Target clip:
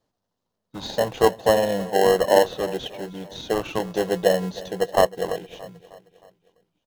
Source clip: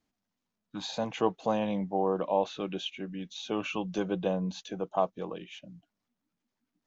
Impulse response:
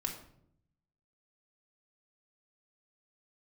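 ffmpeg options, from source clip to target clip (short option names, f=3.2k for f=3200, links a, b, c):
-filter_complex "[0:a]equalizer=f=125:t=o:w=1:g=5,equalizer=f=250:t=o:w=1:g=-8,equalizer=f=500:t=o:w=1:g=11,equalizer=f=1k:t=o:w=1:g=8,equalizer=f=2k:t=o:w=1:g=-8,equalizer=f=4k:t=o:w=1:g=5,asplit=2[a][b];[b]acrusher=samples=37:mix=1:aa=0.000001,volume=-4dB[c];[a][c]amix=inputs=2:normalize=0,aecho=1:1:312|624|936|1248:0.126|0.0629|0.0315|0.0157"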